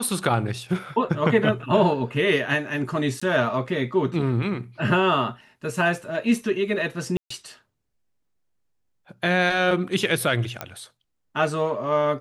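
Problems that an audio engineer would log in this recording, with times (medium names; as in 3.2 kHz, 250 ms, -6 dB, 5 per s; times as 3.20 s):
3.20–3.21 s: dropout 15 ms
7.17–7.30 s: dropout 134 ms
10.61 s: pop -13 dBFS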